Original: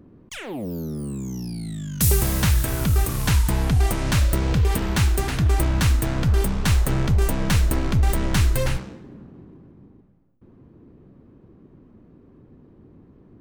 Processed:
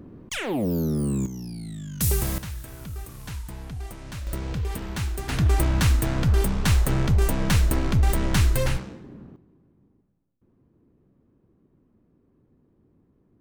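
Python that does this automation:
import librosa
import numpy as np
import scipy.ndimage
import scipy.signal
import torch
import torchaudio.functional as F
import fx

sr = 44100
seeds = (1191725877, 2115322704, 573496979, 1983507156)

y = fx.gain(x, sr, db=fx.steps((0.0, 5.0), (1.26, -4.5), (2.38, -16.0), (4.27, -9.0), (5.29, -1.0), (9.36, -13.0)))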